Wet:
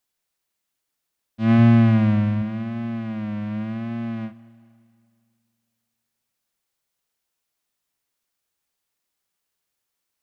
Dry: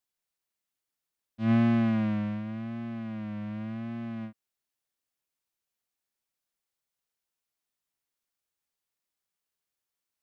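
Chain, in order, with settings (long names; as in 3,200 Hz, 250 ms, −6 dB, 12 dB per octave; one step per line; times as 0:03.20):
0:01.58–0:02.42: parametric band 110 Hz +7 dB 0.43 octaves
four-comb reverb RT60 2.3 s, combs from 26 ms, DRR 17 dB
level +7.5 dB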